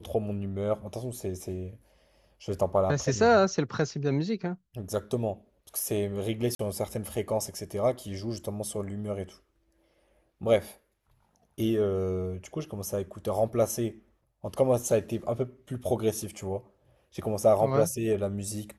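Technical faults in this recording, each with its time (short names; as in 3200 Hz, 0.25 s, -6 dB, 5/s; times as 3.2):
6.55–6.59 gap 43 ms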